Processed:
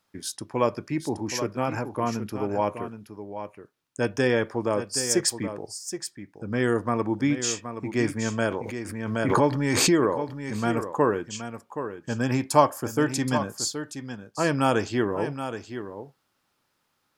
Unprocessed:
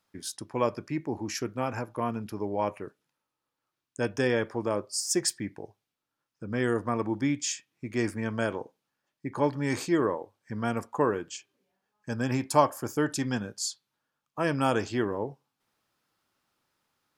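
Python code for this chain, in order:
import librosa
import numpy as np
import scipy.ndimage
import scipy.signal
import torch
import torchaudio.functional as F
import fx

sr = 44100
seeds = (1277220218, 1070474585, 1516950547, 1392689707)

y = x + 10.0 ** (-10.0 / 20.0) * np.pad(x, (int(773 * sr / 1000.0), 0))[:len(x)]
y = fx.pre_swell(y, sr, db_per_s=33.0, at=(8.46, 10.6))
y = y * 10.0 ** (3.5 / 20.0)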